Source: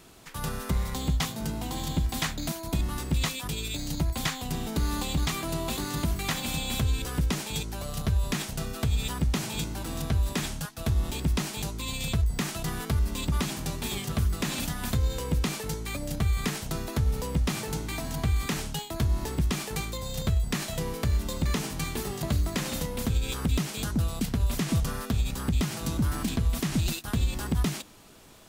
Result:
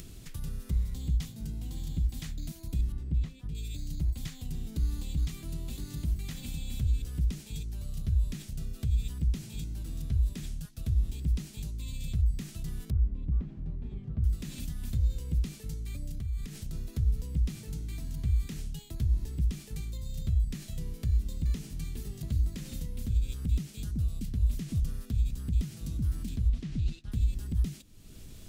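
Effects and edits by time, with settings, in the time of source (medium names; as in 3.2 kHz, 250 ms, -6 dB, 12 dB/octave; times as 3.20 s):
2.92–3.55 s: low-pass 1.2 kHz 6 dB/octave
12.90–14.24 s: low-pass 1.1 kHz
16.09–16.73 s: compression 4:1, threshold -29 dBFS
26.49–27.12 s: low-pass 4.3 kHz
whole clip: amplifier tone stack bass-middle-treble 10-0-1; upward compressor, threshold -40 dBFS; trim +7 dB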